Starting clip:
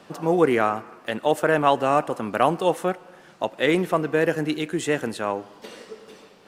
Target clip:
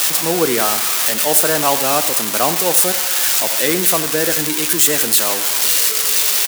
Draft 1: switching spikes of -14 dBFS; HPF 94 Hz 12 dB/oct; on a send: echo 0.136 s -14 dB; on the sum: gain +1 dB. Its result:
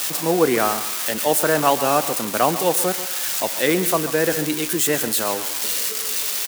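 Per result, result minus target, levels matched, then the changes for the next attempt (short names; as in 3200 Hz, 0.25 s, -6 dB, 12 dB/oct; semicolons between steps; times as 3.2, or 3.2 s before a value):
echo 51 ms late; switching spikes: distortion -8 dB
change: echo 85 ms -14 dB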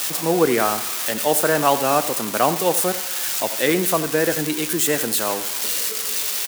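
switching spikes: distortion -8 dB
change: switching spikes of -5.5 dBFS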